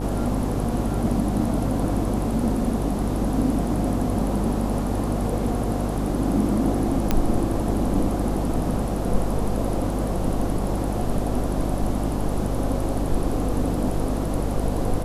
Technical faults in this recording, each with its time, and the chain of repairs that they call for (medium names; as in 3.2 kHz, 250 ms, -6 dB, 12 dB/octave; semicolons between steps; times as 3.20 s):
buzz 50 Hz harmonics 17 -27 dBFS
7.11 s: pop -6 dBFS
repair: de-click; de-hum 50 Hz, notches 17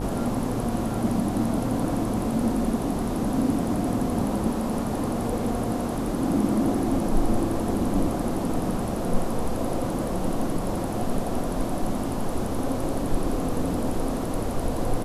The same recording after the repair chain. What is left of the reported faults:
nothing left